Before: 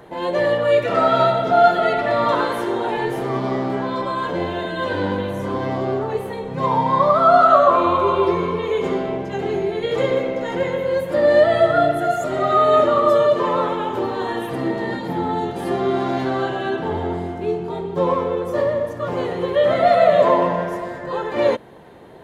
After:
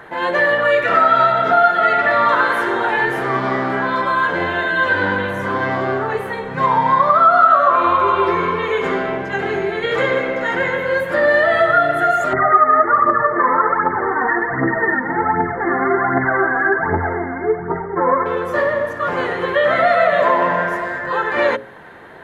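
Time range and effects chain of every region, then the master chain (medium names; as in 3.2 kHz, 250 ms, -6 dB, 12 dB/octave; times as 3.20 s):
12.33–18.26 s: band-stop 580 Hz, Q 10 + phaser 1.3 Hz, delay 4.2 ms, feedback 60% + brick-wall FIR low-pass 2.2 kHz
whole clip: peaking EQ 1.6 kHz +15 dB 1.2 oct; hum notches 60/120/180/240/300/360/420/480/540/600 Hz; compression 2.5:1, threshold -12 dBFS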